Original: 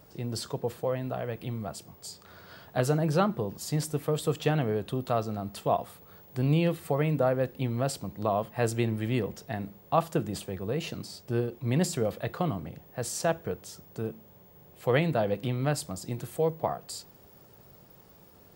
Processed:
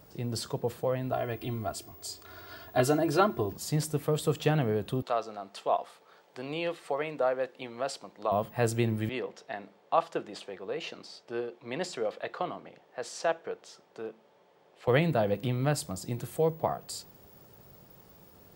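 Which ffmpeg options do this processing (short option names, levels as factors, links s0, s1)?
-filter_complex "[0:a]asettb=1/sr,asplit=3[s0][s1][s2];[s0]atrim=end=1.124[s3];[s1]atrim=start=1.12:end=3.53,asetpts=PTS-STARTPTS,afade=t=in:d=0.004:c=qsin,afade=t=out:st=2.406:d=0.004:c=qsin,aecho=1:1:2.9:0.89,atrim=end_sample=106281[s4];[s2]atrim=start=3.526[s5];[s3][s4]acrossfade=d=0.004:c1=hsin:c2=qsin[s6];[s6][s5]acrossfade=d=0.004:c1=qsin:c2=hsin,asettb=1/sr,asplit=3[s7][s8][s9];[s7]atrim=end=5.024[s10];[s8]atrim=start=5.02:end=8.32,asetpts=PTS-STARTPTS,afade=t=in:d=0.004:c=qsin,afade=t=out:st=3.296:d=0.004:c=qsin,highpass=490,lowpass=6300[s11];[s9]atrim=start=8.316[s12];[s10][s11]acrossfade=d=0.004:c1=hsin:c2=qsin[s13];[s13][s12]acrossfade=d=0.004:c1=qsin:c2=hsin,asettb=1/sr,asplit=3[s14][s15][s16];[s14]atrim=end=9.094[s17];[s15]atrim=start=9.09:end=14.88,asetpts=PTS-STARTPTS,afade=t=in:d=0.004:c=qsin,afade=t=out:st=5.786:d=0.004:c=qsin,highpass=440,lowpass=4700[s18];[s16]atrim=start=14.876[s19];[s17][s18]acrossfade=d=0.004:c1=hsin:c2=qsin[s20];[s20][s19]acrossfade=d=0.004:c1=qsin:c2=hsin"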